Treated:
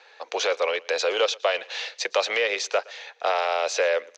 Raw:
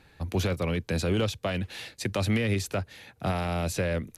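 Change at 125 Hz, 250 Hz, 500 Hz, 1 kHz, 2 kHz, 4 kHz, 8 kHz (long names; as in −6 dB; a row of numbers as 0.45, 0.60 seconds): below −40 dB, −17.5 dB, +7.0 dB, +8.5 dB, +8.0 dB, +8.5 dB, +5.5 dB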